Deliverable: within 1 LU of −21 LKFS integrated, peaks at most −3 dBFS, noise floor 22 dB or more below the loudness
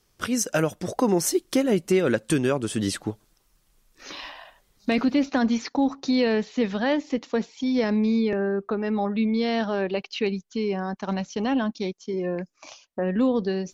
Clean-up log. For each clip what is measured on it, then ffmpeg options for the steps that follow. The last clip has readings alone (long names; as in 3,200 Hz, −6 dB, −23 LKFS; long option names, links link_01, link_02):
integrated loudness −25.0 LKFS; sample peak −10.5 dBFS; target loudness −21.0 LKFS
→ -af "volume=4dB"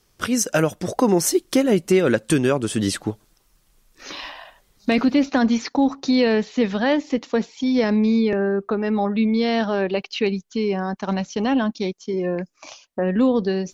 integrated loudness −21.0 LKFS; sample peak −6.5 dBFS; background noise floor −63 dBFS